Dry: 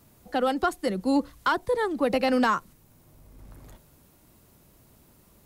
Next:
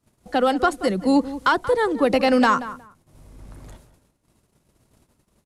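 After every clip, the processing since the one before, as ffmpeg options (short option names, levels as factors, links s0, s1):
-filter_complex "[0:a]agate=range=0.0891:threshold=0.00178:ratio=16:detection=peak,lowpass=f=11000:w=0.5412,lowpass=f=11000:w=1.3066,asplit=2[s0][s1];[s1]adelay=181,lowpass=f=2200:p=1,volume=0.2,asplit=2[s2][s3];[s3]adelay=181,lowpass=f=2200:p=1,volume=0.18[s4];[s0][s2][s4]amix=inputs=3:normalize=0,volume=1.88"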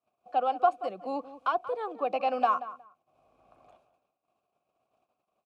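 -filter_complex "[0:a]asplit=3[s0][s1][s2];[s0]bandpass=f=730:t=q:w=8,volume=1[s3];[s1]bandpass=f=1090:t=q:w=8,volume=0.501[s4];[s2]bandpass=f=2440:t=q:w=8,volume=0.355[s5];[s3][s4][s5]amix=inputs=3:normalize=0,volume=1.12"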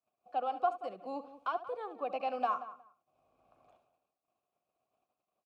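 -af "aecho=1:1:72:0.2,volume=0.447"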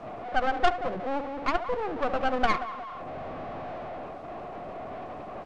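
-af "aeval=exprs='val(0)+0.5*0.0224*sgn(val(0))':c=same,adynamicsmooth=sensitivity=1:basefreq=1100,aeval=exprs='0.112*(cos(1*acos(clip(val(0)/0.112,-1,1)))-cos(1*PI/2))+0.0447*(cos(4*acos(clip(val(0)/0.112,-1,1)))-cos(4*PI/2))':c=same,volume=1.68"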